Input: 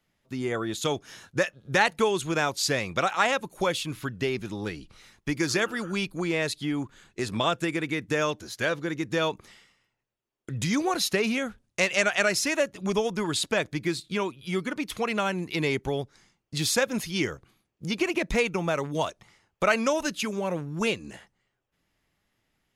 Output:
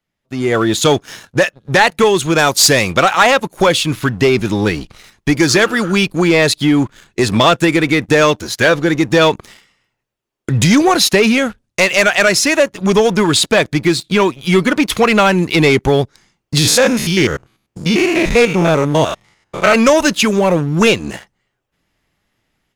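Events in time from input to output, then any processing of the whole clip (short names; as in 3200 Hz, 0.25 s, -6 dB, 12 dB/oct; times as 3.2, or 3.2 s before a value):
2.38–2.92 high shelf 6600 Hz +11 dB
16.58–19.75 stepped spectrum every 0.1 s
whole clip: high shelf 11000 Hz -4 dB; AGC gain up to 11.5 dB; sample leveller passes 2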